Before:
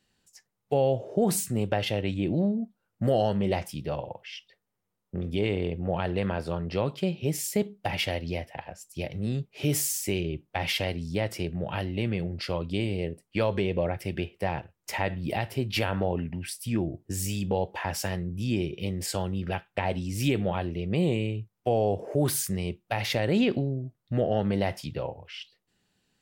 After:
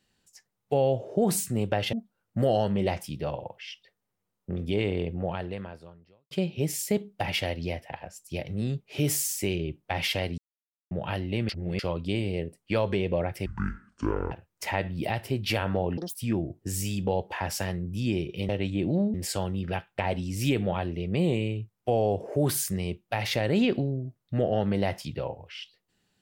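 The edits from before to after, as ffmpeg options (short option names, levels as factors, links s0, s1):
-filter_complex "[0:a]asplit=13[s0][s1][s2][s3][s4][s5][s6][s7][s8][s9][s10][s11][s12];[s0]atrim=end=1.932[s13];[s1]atrim=start=2.578:end=6.96,asetpts=PTS-STARTPTS,afade=t=out:st=3.202:d=1.18:c=qua[s14];[s2]atrim=start=6.96:end=11.03,asetpts=PTS-STARTPTS,afade=t=in:d=0.004:c=hsin,afade=t=out:st=4.066:d=0.004:c=hsin[s15];[s3]atrim=start=11.03:end=11.56,asetpts=PTS-STARTPTS,volume=0[s16];[s4]atrim=start=11.56:end=12.142,asetpts=PTS-STARTPTS,afade=t=in:d=0.004:c=hsin[s17];[s5]atrim=start=12.138:end=12.442,asetpts=PTS-STARTPTS,areverse[s18];[s6]atrim=start=12.438:end=14.114[s19];[s7]atrim=start=14.11:end=14.58,asetpts=PTS-STARTPTS,asetrate=24255,aresample=44100,atrim=end_sample=37685,asetpts=PTS-STARTPTS[s20];[s8]atrim=start=14.576:end=16.244[s21];[s9]atrim=start=16.24:end=16.59,asetpts=PTS-STARTPTS,asetrate=87318,aresample=44100,atrim=end_sample=7795,asetpts=PTS-STARTPTS[s22];[s10]atrim=start=16.586:end=18.932[s23];[s11]atrim=start=1.928:end=2.582[s24];[s12]atrim=start=18.928[s25];[s14][s15][s16][s17]concat=n=4:v=0:a=1[s26];[s13][s26]acrossfade=d=0.004:c1=hsin:c2=hsin[s27];[s27][s18]acrossfade=d=0.004:c1=hsin:c2=hsin[s28];[s28][s19]acrossfade=d=0.004:c1=hsin:c2=hsin[s29];[s29][s20]acrossfade=d=0.004:c1=hsin:c2=hsin[s30];[s30][s21]acrossfade=d=0.004:c1=hsin:c2=hsin[s31];[s31][s22]acrossfade=d=0.004:c1=hsin:c2=hsin[s32];[s32][s23]acrossfade=d=0.004:c1=hsin:c2=hsin[s33];[s33][s24]acrossfade=d=0.004:c1=hsin:c2=hsin[s34];[s34][s25]acrossfade=d=0.004:c1=hsin:c2=hsin"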